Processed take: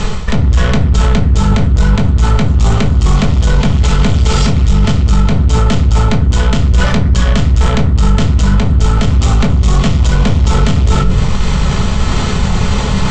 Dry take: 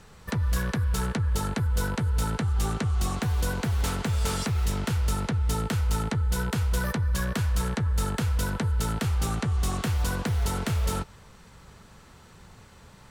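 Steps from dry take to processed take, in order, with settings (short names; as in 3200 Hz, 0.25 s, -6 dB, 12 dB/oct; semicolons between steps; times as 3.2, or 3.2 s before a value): in parallel at -1.5 dB: level quantiser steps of 9 dB; on the sum: tube stage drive 28 dB, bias 0.65; elliptic low-pass 7400 Hz, stop band 50 dB; low shelf 96 Hz +10 dB; notch 1600 Hz, Q 7.9; shoebox room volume 360 m³, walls furnished, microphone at 1.4 m; reverse; compressor 5:1, threshold -40 dBFS, peak gain reduction 20.5 dB; reverse; bell 3200 Hz +4.5 dB 0.2 oct; maximiser +34.5 dB; gain -1 dB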